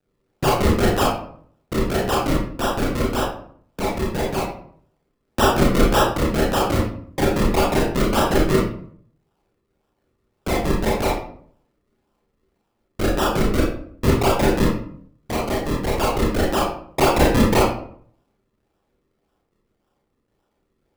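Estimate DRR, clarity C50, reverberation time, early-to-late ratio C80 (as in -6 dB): -4.5 dB, 2.0 dB, 0.60 s, 7.0 dB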